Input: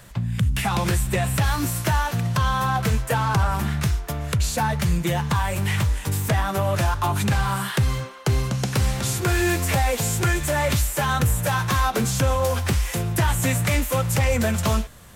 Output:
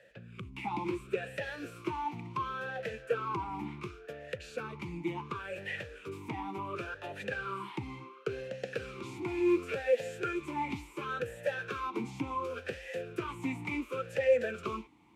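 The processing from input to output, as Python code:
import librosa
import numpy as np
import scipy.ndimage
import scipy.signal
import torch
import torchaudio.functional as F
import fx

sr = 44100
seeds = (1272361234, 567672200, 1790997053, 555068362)

y = fx.vowel_sweep(x, sr, vowels='e-u', hz=0.7)
y = F.gain(torch.from_numpy(y), 1.0).numpy()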